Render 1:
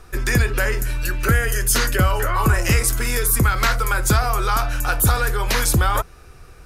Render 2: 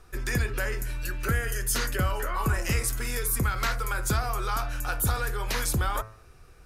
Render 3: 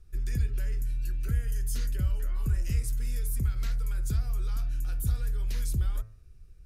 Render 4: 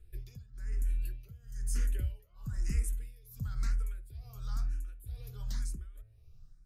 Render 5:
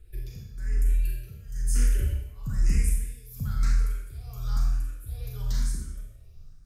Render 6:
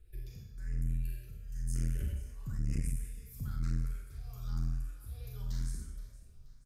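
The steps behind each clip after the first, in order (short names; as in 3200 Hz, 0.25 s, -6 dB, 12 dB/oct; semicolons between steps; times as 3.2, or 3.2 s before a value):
de-hum 109.5 Hz, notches 24; gain -9 dB
passive tone stack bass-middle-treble 10-0-1; gain +8.5 dB
tremolo 1.1 Hz, depth 90%; endless phaser +1 Hz
Schroeder reverb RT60 0.75 s, combs from 29 ms, DRR -0.5 dB; gain +5.5 dB
feedback echo 0.476 s, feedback 41%, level -20 dB; core saturation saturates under 130 Hz; gain -7.5 dB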